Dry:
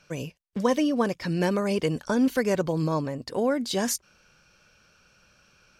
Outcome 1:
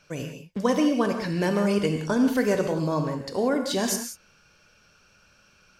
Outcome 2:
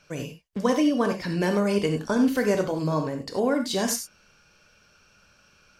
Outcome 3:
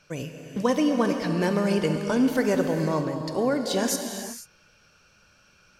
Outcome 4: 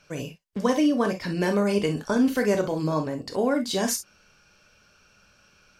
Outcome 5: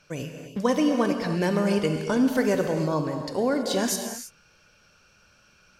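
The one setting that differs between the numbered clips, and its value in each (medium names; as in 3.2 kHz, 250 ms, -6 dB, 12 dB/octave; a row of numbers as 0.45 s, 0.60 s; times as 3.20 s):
gated-style reverb, gate: 210 ms, 120 ms, 510 ms, 80 ms, 350 ms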